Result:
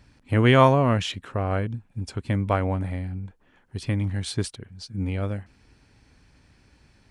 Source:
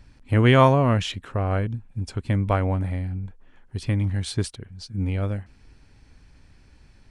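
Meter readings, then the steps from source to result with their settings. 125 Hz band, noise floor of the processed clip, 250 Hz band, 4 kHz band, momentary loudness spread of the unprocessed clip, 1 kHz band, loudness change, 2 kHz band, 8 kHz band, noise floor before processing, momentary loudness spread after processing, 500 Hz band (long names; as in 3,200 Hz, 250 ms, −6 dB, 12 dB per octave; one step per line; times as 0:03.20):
−2.5 dB, −61 dBFS, −0.5 dB, 0.0 dB, 17 LU, 0.0 dB, −1.0 dB, 0.0 dB, 0.0 dB, −54 dBFS, 18 LU, 0.0 dB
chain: high-pass filter 94 Hz 6 dB per octave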